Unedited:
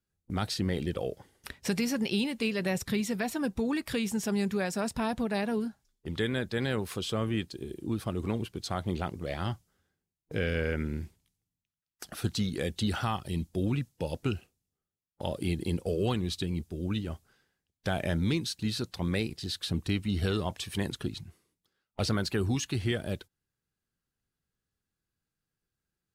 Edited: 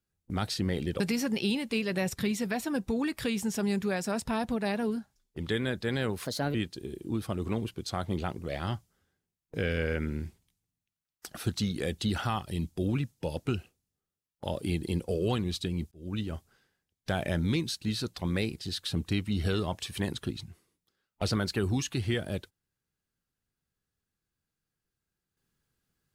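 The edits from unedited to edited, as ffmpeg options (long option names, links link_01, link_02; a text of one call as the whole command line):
ffmpeg -i in.wav -filter_complex "[0:a]asplit=5[link_01][link_02][link_03][link_04][link_05];[link_01]atrim=end=1.002[link_06];[link_02]atrim=start=1.688:end=6.944[link_07];[link_03]atrim=start=6.94:end=7.32,asetpts=PTS-STARTPTS,asetrate=56889,aresample=44100[link_08];[link_04]atrim=start=7.316:end=16.69,asetpts=PTS-STARTPTS,afade=type=out:start_time=9.37:duration=0.004:curve=hsin[link_09];[link_05]atrim=start=16.69,asetpts=PTS-STARTPTS,afade=type=in:duration=0.31[link_10];[link_06][link_07]acrossfade=duration=0.004:curve1=hsin:curve2=hsin[link_11];[link_11][link_08]acrossfade=duration=0.004:curve1=hsin:curve2=hsin[link_12];[link_09][link_10]concat=n=2:v=0:a=1[link_13];[link_12][link_13]acrossfade=duration=0.004:curve1=hsin:curve2=hsin" out.wav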